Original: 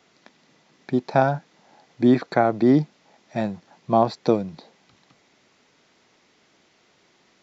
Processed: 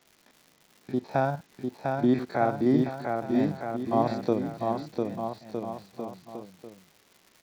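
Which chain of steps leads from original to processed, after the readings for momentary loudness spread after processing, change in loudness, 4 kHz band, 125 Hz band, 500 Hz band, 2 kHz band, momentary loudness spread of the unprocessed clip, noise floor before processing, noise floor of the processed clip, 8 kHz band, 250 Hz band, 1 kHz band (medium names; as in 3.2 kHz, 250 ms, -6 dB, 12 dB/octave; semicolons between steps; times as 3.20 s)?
14 LU, -6.5 dB, -6.0 dB, -4.5 dB, -4.5 dB, -5.5 dB, 14 LU, -62 dBFS, -63 dBFS, no reading, -4.0 dB, -4.5 dB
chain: spectrogram pixelated in time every 50 ms; bouncing-ball echo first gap 700 ms, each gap 0.8×, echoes 5; crackle 270 per s -38 dBFS; trim -6 dB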